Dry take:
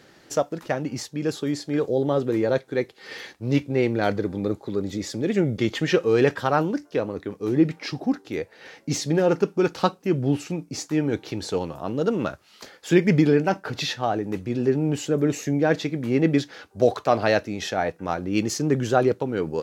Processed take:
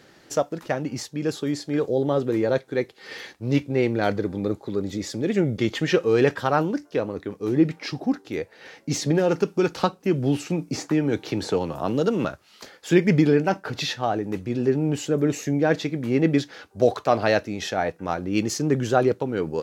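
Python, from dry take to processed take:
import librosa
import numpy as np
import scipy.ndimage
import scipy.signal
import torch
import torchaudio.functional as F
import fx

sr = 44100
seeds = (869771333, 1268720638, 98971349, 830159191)

y = fx.band_squash(x, sr, depth_pct=70, at=(9.02, 12.25))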